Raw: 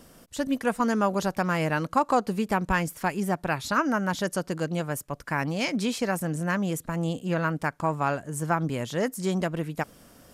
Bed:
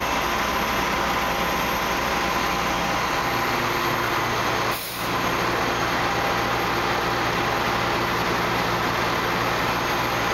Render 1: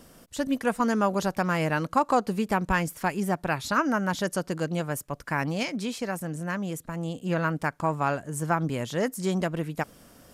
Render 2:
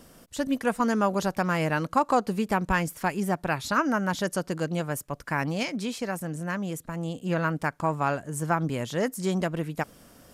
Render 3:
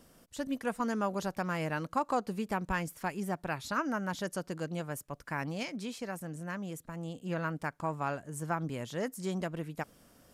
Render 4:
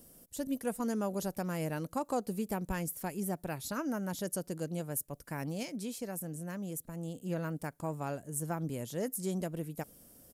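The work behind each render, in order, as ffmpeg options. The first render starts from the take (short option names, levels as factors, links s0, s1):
-filter_complex "[0:a]asplit=3[s0][s1][s2];[s0]atrim=end=5.632[s3];[s1]atrim=start=5.628:end=7.222,asetpts=PTS-STARTPTS,volume=0.631[s4];[s2]atrim=start=7.218[s5];[s3][s4]acrossfade=d=0.004:c1=hsin:c2=hsin[s6];[s6][s5]acrossfade=d=0.004:c1=hsin:c2=hsin"
-af anull
-af "volume=0.398"
-af "firequalizer=gain_entry='entry(490,0);entry(1100,-9);entry(11000,11)':delay=0.05:min_phase=1"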